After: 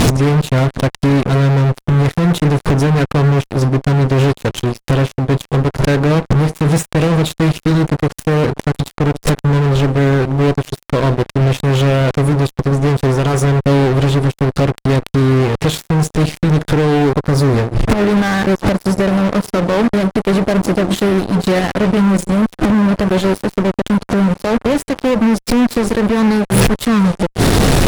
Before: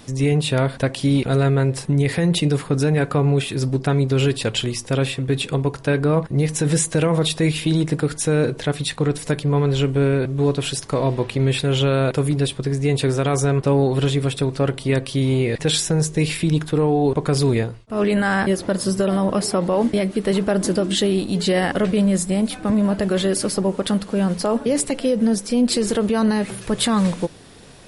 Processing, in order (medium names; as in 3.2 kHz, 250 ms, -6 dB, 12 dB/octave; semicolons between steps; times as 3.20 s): inverted gate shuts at -19 dBFS, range -32 dB; in parallel at -5 dB: sine folder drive 11 dB, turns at -17 dBFS; on the sum: tilt EQ -2 dB/octave; fuzz box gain 37 dB, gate -41 dBFS; 17.02–17.57 s: peaking EQ 2.8 kHz -6 dB 0.69 oct; trim +5 dB